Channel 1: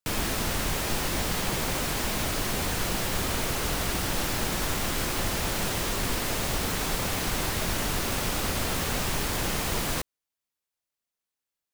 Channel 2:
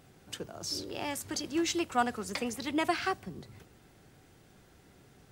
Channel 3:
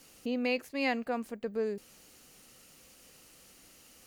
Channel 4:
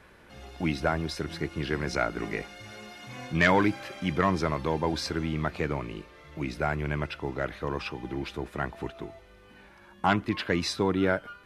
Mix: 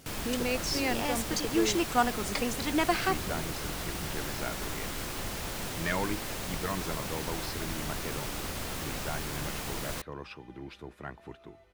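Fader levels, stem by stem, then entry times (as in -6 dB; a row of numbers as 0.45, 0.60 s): -8.0, +2.5, -1.0, -10.0 dB; 0.00, 0.00, 0.00, 2.45 s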